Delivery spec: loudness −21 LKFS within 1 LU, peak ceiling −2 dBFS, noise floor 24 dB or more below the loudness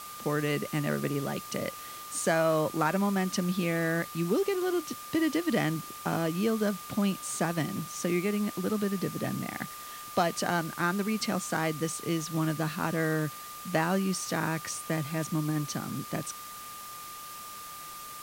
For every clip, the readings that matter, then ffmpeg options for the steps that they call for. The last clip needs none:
interfering tone 1,200 Hz; level of the tone −43 dBFS; background noise floor −43 dBFS; target noise floor −55 dBFS; integrated loudness −30.5 LKFS; sample peak −12.0 dBFS; target loudness −21.0 LKFS
→ -af "bandreject=frequency=1200:width=30"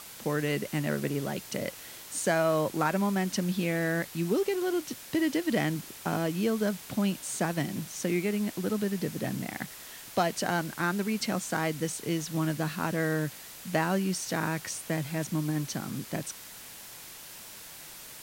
interfering tone none found; background noise floor −46 dBFS; target noise floor −55 dBFS
→ -af "afftdn=noise_reduction=9:noise_floor=-46"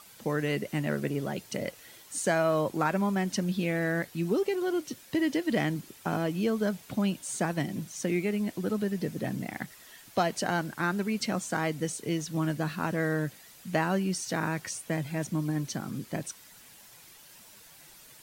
background noise floor −53 dBFS; target noise floor −55 dBFS
→ -af "afftdn=noise_reduction=6:noise_floor=-53"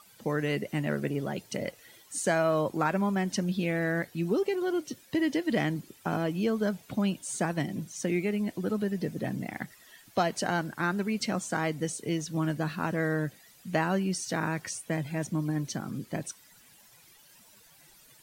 background noise floor −58 dBFS; integrated loudness −31.0 LKFS; sample peak −13.0 dBFS; target loudness −21.0 LKFS
→ -af "volume=10dB"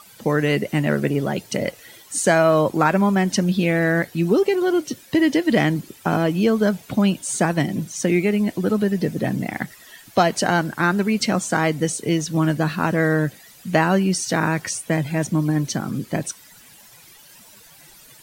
integrated loudness −21.0 LKFS; sample peak −3.0 dBFS; background noise floor −48 dBFS

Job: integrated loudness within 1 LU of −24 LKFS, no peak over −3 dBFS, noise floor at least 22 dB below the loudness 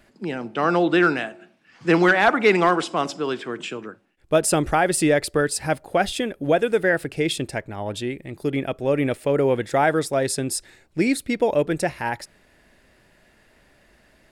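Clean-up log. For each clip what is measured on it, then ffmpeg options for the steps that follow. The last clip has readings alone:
integrated loudness −22.0 LKFS; sample peak −7.5 dBFS; target loudness −24.0 LKFS
→ -af "volume=-2dB"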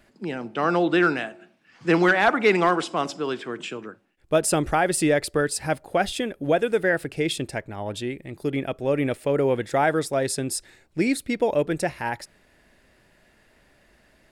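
integrated loudness −24.0 LKFS; sample peak −9.5 dBFS; background noise floor −61 dBFS

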